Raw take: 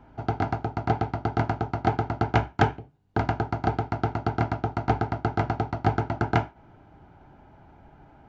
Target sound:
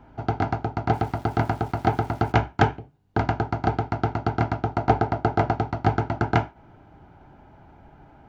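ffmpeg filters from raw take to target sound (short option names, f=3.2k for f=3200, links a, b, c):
-filter_complex "[0:a]asplit=3[a][b][c];[a]afade=t=out:st=0.92:d=0.02[d];[b]aeval=exprs='val(0)*gte(abs(val(0)),0.00447)':c=same,afade=t=in:st=0.92:d=0.02,afade=t=out:st=2.31:d=0.02[e];[c]afade=t=in:st=2.31:d=0.02[f];[d][e][f]amix=inputs=3:normalize=0,asettb=1/sr,asplit=3[g][h][i];[g]atrim=end=4.754[j];[h]atrim=start=4.75:end=5.54,asetpts=PTS-STARTPTS,afade=t=in:d=0.004:c=qsin,afade=t=out:st=0.786:d=0.004:c=qsin,equalizer=f=560:w=1.1:g=5[k];[i]atrim=start=5.536[l];[j][k]acrossfade=d=0.004:c1=hsin:c2=qsin[m];[m][l]acrossfade=d=0.004:c1=qsin:c2=hsin,volume=2dB"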